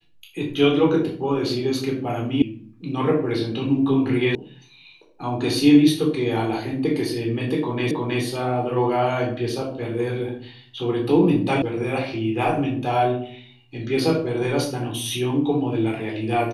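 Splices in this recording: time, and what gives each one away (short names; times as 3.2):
2.42 sound cut off
4.35 sound cut off
7.91 repeat of the last 0.32 s
11.62 sound cut off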